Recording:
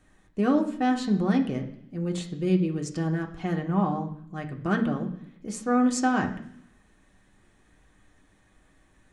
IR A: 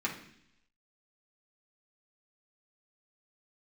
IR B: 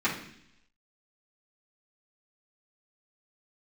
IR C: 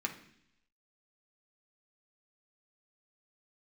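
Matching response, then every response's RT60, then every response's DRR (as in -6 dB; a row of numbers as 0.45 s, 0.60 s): C; 0.70 s, 0.70 s, 0.70 s; -4.5 dB, -11.0 dB, 1.0 dB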